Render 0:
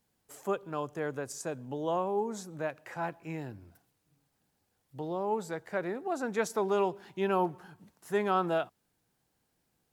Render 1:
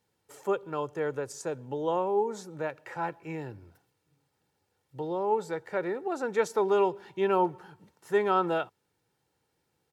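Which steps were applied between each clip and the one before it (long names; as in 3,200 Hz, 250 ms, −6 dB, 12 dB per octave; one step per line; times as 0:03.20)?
high-pass filter 85 Hz
high-shelf EQ 7,400 Hz −9 dB
comb filter 2.2 ms, depth 45%
level +2 dB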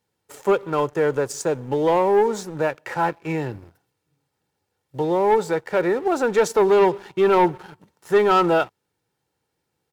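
leveller curve on the samples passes 2
level +4 dB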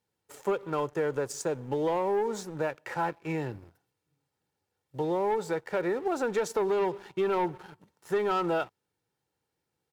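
downward compressor, threshold −18 dBFS, peak gain reduction 5.5 dB
level −6.5 dB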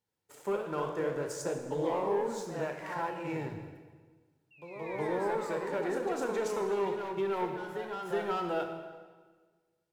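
sound drawn into the spectrogram fall, 0:04.86–0:05.76, 850–2,500 Hz −43 dBFS
on a send at −4.5 dB: convolution reverb RT60 1.5 s, pre-delay 14 ms
on the sum: delay with pitch and tempo change per echo 88 ms, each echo +1 semitone, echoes 2, each echo −6 dB
level −6 dB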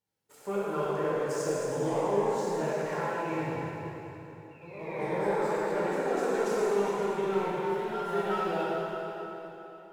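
dense smooth reverb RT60 3.5 s, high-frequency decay 0.85×, DRR −6.5 dB
level −3.5 dB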